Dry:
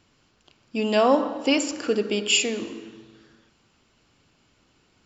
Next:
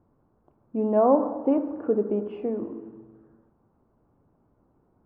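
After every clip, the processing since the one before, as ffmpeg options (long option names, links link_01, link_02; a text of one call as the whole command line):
ffmpeg -i in.wav -af "lowpass=frequency=1000:width=0.5412,lowpass=frequency=1000:width=1.3066" out.wav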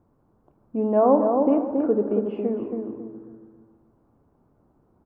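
ffmpeg -i in.wav -filter_complex "[0:a]asplit=2[link_01][link_02];[link_02]adelay=275,lowpass=frequency=1300:poles=1,volume=-4dB,asplit=2[link_03][link_04];[link_04]adelay=275,lowpass=frequency=1300:poles=1,volume=0.3,asplit=2[link_05][link_06];[link_06]adelay=275,lowpass=frequency=1300:poles=1,volume=0.3,asplit=2[link_07][link_08];[link_08]adelay=275,lowpass=frequency=1300:poles=1,volume=0.3[link_09];[link_01][link_03][link_05][link_07][link_09]amix=inputs=5:normalize=0,volume=1.5dB" out.wav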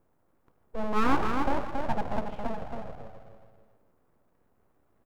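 ffmpeg -i in.wav -af "crystalizer=i=1.5:c=0,aeval=exprs='abs(val(0))':channel_layout=same,volume=-4.5dB" out.wav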